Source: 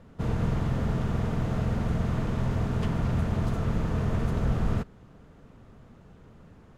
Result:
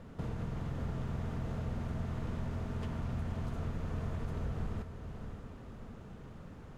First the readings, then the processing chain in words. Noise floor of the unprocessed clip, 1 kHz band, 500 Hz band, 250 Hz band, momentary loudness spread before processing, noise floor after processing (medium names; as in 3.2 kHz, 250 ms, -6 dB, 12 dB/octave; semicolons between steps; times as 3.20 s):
-53 dBFS, -10.0 dB, -10.5 dB, -10.5 dB, 1 LU, -50 dBFS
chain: compression 3:1, threshold -41 dBFS, peak gain reduction 15 dB; on a send: echo that smears into a reverb 551 ms, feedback 47%, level -8 dB; on the sum: trim +1.5 dB